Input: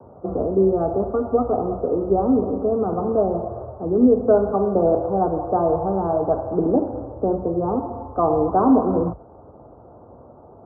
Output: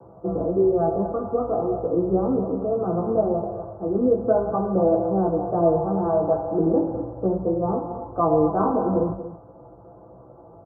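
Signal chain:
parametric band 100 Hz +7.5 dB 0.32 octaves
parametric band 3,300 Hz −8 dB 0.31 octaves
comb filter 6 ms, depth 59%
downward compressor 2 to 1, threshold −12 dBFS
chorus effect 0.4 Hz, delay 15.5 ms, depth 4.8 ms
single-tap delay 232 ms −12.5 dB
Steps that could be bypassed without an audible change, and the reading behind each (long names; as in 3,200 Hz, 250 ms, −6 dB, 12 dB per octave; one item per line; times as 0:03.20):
parametric band 3,300 Hz: nothing at its input above 1,300 Hz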